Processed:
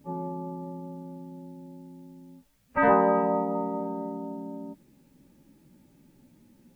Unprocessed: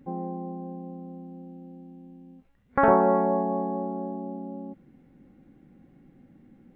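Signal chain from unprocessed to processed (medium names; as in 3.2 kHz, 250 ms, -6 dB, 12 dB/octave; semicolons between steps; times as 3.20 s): frequency axis rescaled in octaves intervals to 108%; word length cut 12-bit, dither triangular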